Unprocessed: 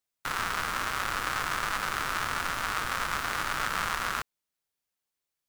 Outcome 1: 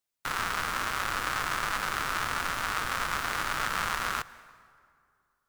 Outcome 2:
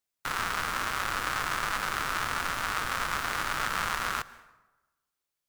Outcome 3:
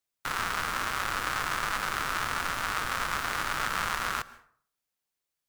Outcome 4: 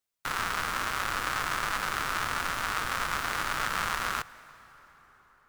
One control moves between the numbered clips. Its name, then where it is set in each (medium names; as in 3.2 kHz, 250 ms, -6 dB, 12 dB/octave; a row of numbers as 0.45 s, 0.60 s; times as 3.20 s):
plate-style reverb, RT60: 2.3 s, 1.1 s, 0.53 s, 5.3 s